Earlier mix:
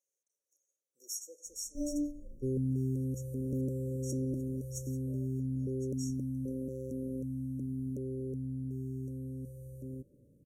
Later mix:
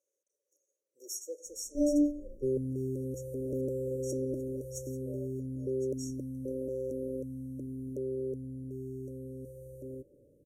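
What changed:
second sound: add bell 240 Hz -7 dB 2.6 oct; master: add band shelf 700 Hz +12 dB 2.7 oct

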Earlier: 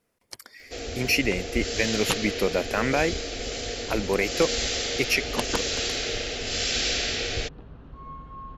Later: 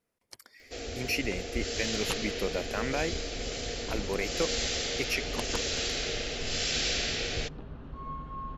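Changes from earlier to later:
speech -8.0 dB; first sound -4.5 dB; reverb: on, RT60 0.95 s

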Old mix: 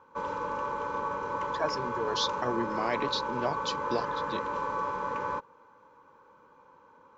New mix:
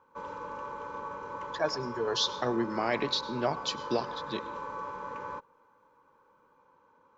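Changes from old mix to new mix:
background -6.5 dB; reverb: on, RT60 0.45 s

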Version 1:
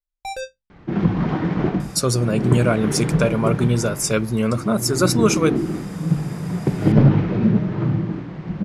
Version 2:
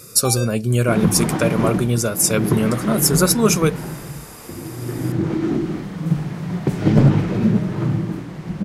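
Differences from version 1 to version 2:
speech: entry -1.80 s; second sound: remove air absorption 130 m; master: remove air absorption 56 m

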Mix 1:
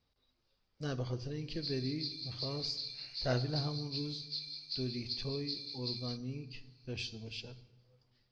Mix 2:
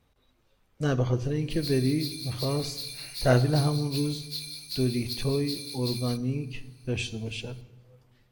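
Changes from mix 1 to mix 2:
background: remove air absorption 75 m; master: remove ladder low-pass 5200 Hz, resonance 75%

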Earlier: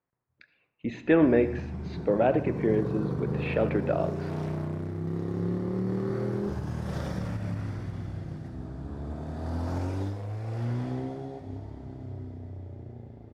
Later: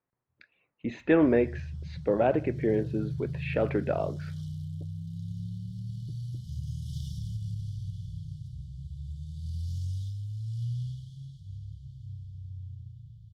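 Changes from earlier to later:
background: add brick-wall FIR band-stop 170–2900 Hz; reverb: off

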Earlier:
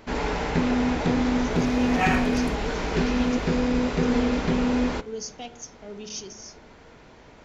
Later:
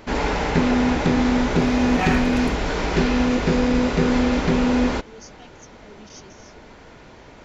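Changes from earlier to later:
speech -8.0 dB; first sound +5.5 dB; reverb: off

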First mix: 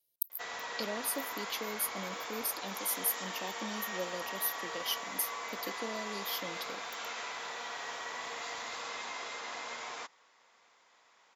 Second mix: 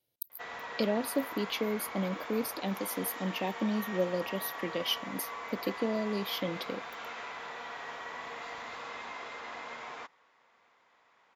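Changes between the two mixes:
speech +8.5 dB; master: add tone controls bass +5 dB, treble -14 dB

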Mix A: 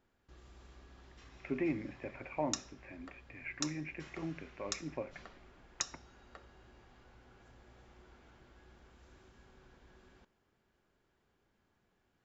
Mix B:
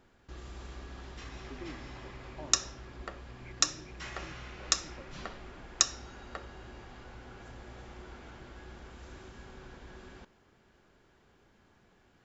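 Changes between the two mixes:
speech -11.5 dB; background +12.0 dB

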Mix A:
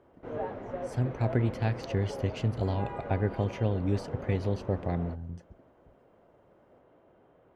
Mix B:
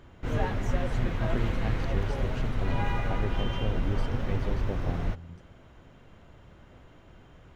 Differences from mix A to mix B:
speech -5.5 dB; background: remove band-pass 540 Hz, Q 1.3

